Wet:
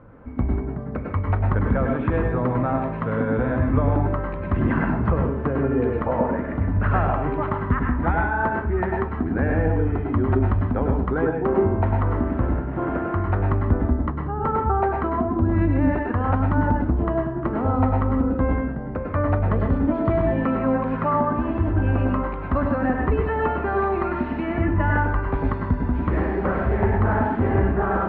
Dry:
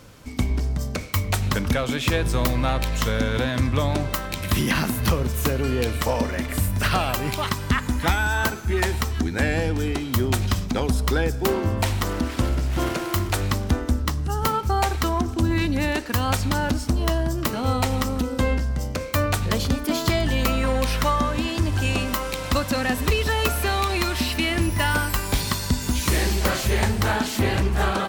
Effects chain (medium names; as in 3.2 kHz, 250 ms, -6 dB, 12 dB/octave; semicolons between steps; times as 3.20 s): low-pass 1.5 kHz 24 dB/octave; reverberation RT60 0.35 s, pre-delay 93 ms, DRR 1 dB